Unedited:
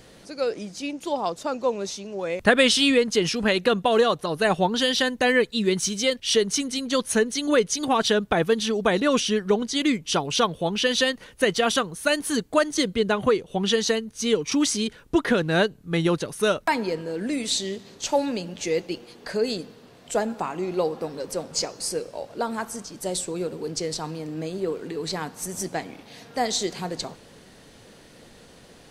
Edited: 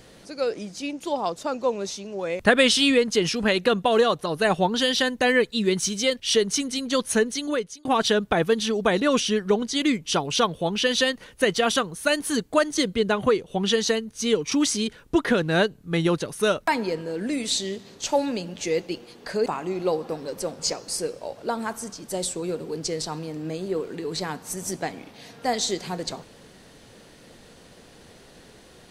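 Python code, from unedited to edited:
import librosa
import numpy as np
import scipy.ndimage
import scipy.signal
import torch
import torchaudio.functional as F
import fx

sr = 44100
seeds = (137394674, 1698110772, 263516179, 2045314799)

y = fx.edit(x, sr, fx.fade_out_span(start_s=7.27, length_s=0.58),
    fx.cut(start_s=19.46, length_s=0.92), tone=tone)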